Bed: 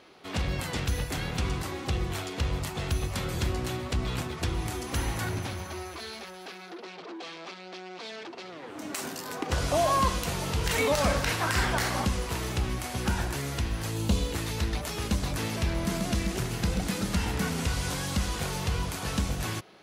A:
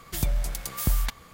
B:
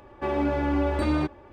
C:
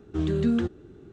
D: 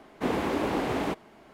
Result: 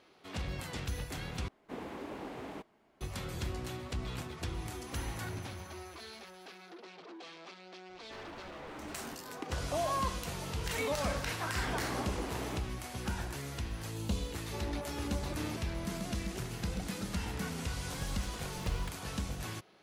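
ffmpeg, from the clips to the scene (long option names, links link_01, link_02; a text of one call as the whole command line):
ffmpeg -i bed.wav -i cue0.wav -i cue1.wav -i cue2.wav -i cue3.wav -filter_complex "[4:a]asplit=2[link_01][link_02];[2:a]asplit=2[link_03][link_04];[0:a]volume=-8.5dB[link_05];[link_03]aeval=exprs='0.0422*(abs(mod(val(0)/0.0422+3,4)-2)-1)':channel_layout=same[link_06];[1:a]acrusher=samples=41:mix=1:aa=0.000001:lfo=1:lforange=65.6:lforate=1.6[link_07];[link_05]asplit=2[link_08][link_09];[link_08]atrim=end=1.484[link_10];[link_01]atrim=end=1.53,asetpts=PTS-STARTPTS,volume=-15dB[link_11];[link_09]atrim=start=3.006[link_12];[link_06]atrim=end=1.52,asetpts=PTS-STARTPTS,volume=-16dB,afade=type=in:duration=0.004:curve=hsin,afade=type=out:start_time=1.516:duration=0.004:curve=hsin,adelay=7890[link_13];[link_02]atrim=end=1.53,asetpts=PTS-STARTPTS,volume=-12dB,afade=type=in:duration=0.004:curve=hsin,afade=type=out:start_time=1.526:duration=0.004:curve=hsin,adelay=11450[link_14];[link_04]atrim=end=1.52,asetpts=PTS-STARTPTS,volume=-16dB,afade=type=in:duration=0.004:curve=hsin,afade=type=out:start_time=1.516:duration=0.004:curve=hsin,adelay=14300[link_15];[link_07]atrim=end=1.33,asetpts=PTS-STARTPTS,volume=-15dB,afade=type=in:duration=0.004:curve=hsin,afade=type=out:start_time=1.326:duration=0.004:curve=hsin,adelay=17790[link_16];[link_10][link_11]acrossfade=duration=0.004:curve1=hsin:curve2=hsin[link_17];[link_17][link_12]acrossfade=duration=0.004:curve1=hsin:curve2=hsin[link_18];[link_18][link_13][link_14][link_15][link_16]amix=inputs=5:normalize=0" out.wav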